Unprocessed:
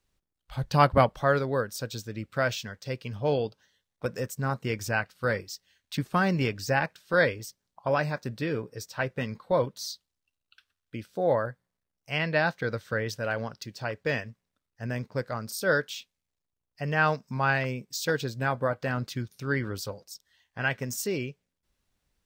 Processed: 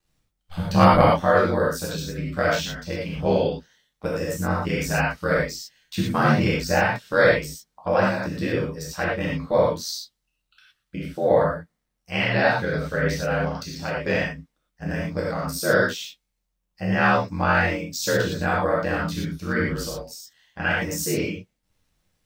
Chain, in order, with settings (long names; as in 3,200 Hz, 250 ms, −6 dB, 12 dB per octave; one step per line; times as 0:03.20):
ring modulation 43 Hz
reverb whose tail is shaped and stops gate 140 ms flat, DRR −5.5 dB
level +2.5 dB